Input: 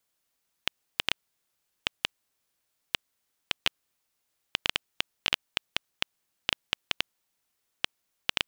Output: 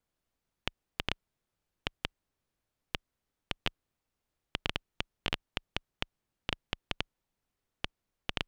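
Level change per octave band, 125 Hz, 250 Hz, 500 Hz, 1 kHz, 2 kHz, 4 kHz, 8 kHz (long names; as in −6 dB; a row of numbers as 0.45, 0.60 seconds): +6.5, +3.0, 0.0, −3.0, −6.5, −8.0, −11.5 decibels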